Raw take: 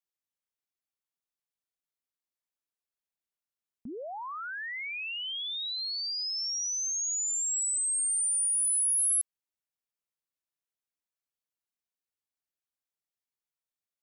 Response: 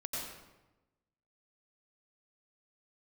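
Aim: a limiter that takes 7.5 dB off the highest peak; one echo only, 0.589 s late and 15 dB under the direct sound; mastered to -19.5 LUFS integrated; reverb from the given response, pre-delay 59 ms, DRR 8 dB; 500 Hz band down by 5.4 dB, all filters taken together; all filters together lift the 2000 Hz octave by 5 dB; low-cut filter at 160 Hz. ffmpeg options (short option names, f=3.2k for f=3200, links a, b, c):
-filter_complex "[0:a]highpass=160,equalizer=f=500:t=o:g=-7.5,equalizer=f=2k:t=o:g=6.5,alimiter=level_in=6.5dB:limit=-24dB:level=0:latency=1,volume=-6.5dB,aecho=1:1:589:0.178,asplit=2[a][b];[1:a]atrim=start_sample=2205,adelay=59[c];[b][c]afir=irnorm=-1:irlink=0,volume=-10dB[d];[a][d]amix=inputs=2:normalize=0,volume=10.5dB"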